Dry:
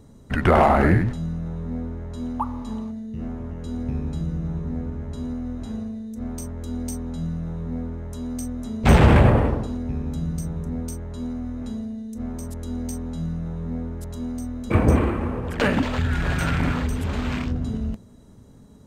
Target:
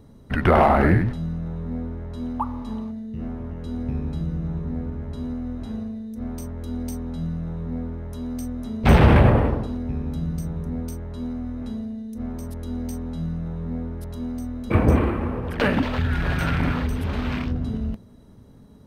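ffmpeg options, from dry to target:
-af "equalizer=f=7.3k:t=o:w=0.46:g=-12.5"

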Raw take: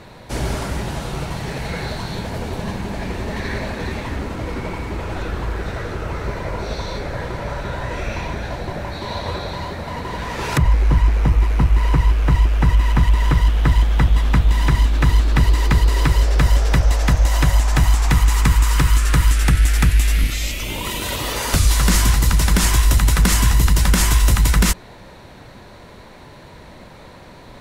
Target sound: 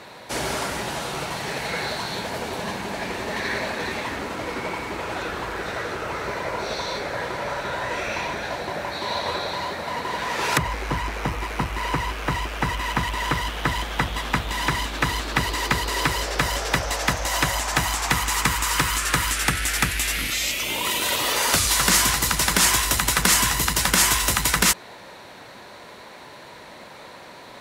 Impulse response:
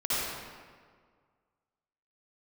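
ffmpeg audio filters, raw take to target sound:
-af "highpass=f=590:p=1,volume=3dB"

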